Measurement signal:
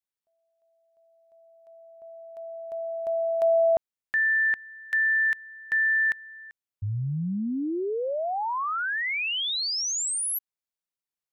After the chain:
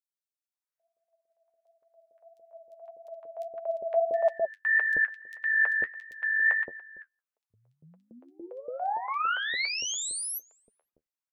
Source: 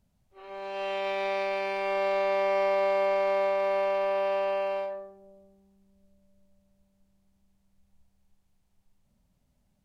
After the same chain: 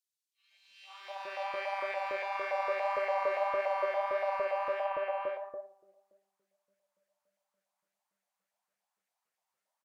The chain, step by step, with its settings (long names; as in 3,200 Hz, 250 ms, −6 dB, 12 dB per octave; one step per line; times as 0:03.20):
auto-filter high-pass saw up 3.5 Hz 510–1,900 Hz
flanger 1.6 Hz, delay 4.3 ms, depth 8.6 ms, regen +40%
three-band delay without the direct sound highs, mids, lows 510/680 ms, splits 590/3,300 Hz
level −1.5 dB